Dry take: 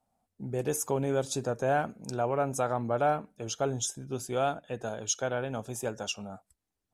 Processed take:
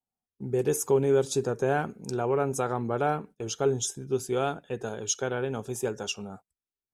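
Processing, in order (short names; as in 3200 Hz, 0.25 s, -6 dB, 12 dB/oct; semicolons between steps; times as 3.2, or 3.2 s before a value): gate -47 dBFS, range -19 dB; thirty-one-band EQ 160 Hz +3 dB, 400 Hz +9 dB, 630 Hz -8 dB; gain +1.5 dB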